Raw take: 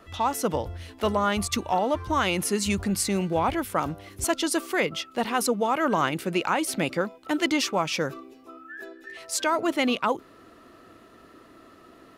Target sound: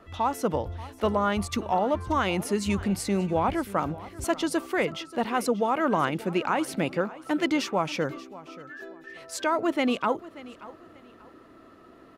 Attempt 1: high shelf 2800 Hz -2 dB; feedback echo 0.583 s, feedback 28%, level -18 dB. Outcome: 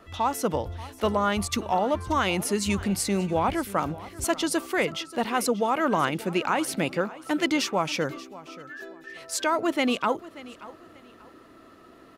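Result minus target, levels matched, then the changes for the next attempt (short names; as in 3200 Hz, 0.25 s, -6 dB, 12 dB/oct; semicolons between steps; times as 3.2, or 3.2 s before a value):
4000 Hz band +3.0 dB
change: high shelf 2800 Hz -9 dB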